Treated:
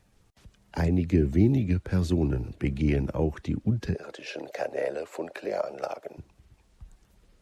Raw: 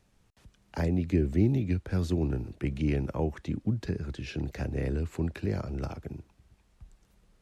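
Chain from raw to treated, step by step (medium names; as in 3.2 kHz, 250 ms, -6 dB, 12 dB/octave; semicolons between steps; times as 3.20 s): coarse spectral quantiser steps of 15 dB; 3.95–6.18 s: resonant high-pass 580 Hz, resonance Q 4.1; trim +3.5 dB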